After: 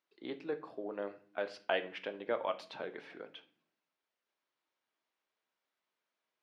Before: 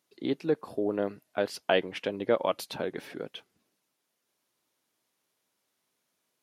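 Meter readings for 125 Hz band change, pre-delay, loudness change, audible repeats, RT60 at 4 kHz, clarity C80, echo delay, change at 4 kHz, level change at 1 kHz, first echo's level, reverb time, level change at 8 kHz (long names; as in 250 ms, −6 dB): −16.5 dB, 3 ms, −8.5 dB, no echo audible, 0.40 s, 20.0 dB, no echo audible, −8.5 dB, −6.5 dB, no echo audible, 0.50 s, below −15 dB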